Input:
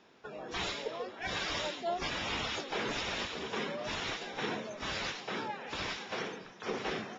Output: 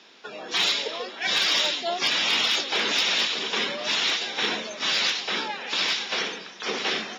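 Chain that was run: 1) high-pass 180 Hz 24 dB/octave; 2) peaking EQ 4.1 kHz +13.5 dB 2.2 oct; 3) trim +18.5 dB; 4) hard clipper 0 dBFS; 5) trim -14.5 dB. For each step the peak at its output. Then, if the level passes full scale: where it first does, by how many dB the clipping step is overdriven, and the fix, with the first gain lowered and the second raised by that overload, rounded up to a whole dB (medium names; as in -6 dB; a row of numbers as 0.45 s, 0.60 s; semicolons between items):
-23.0 dBFS, -14.0 dBFS, +4.5 dBFS, 0.0 dBFS, -14.5 dBFS; step 3, 4.5 dB; step 3 +13.5 dB, step 5 -9.5 dB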